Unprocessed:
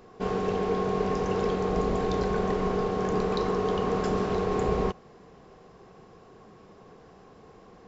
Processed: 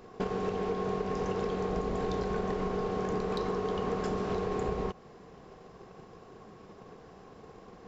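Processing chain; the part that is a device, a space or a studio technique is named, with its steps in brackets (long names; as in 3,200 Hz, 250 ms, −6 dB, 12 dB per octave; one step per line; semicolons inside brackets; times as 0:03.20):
drum-bus smash (transient designer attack +7 dB, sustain 0 dB; downward compressor 6 to 1, threshold −27 dBFS, peak gain reduction 9 dB; soft clipping −22 dBFS, distortion −20 dB)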